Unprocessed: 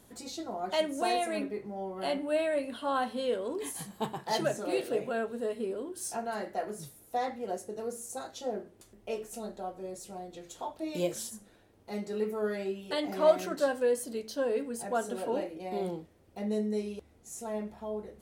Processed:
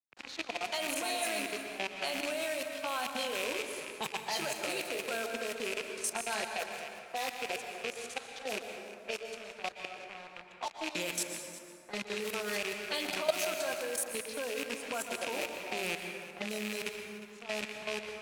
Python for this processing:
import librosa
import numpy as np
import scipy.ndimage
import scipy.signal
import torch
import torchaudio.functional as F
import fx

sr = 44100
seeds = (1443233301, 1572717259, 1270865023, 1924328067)

p1 = fx.rattle_buzz(x, sr, strikes_db=-48.0, level_db=-29.0)
p2 = np.where(np.abs(p1) >= 10.0 ** (-40.0 / 20.0), p1, 0.0)
p3 = fx.high_shelf(p2, sr, hz=3800.0, db=6.5)
p4 = fx.env_lowpass(p3, sr, base_hz=1200.0, full_db=-28.0)
p5 = fx.level_steps(p4, sr, step_db=18)
p6 = fx.tilt_shelf(p5, sr, db=-6.0, hz=700.0)
p7 = p6 + fx.echo_single(p6, sr, ms=357, db=-20.0, dry=0)
p8 = fx.rev_plate(p7, sr, seeds[0], rt60_s=1.7, hf_ratio=0.5, predelay_ms=105, drr_db=5.5)
y = fx.band_squash(p8, sr, depth_pct=40)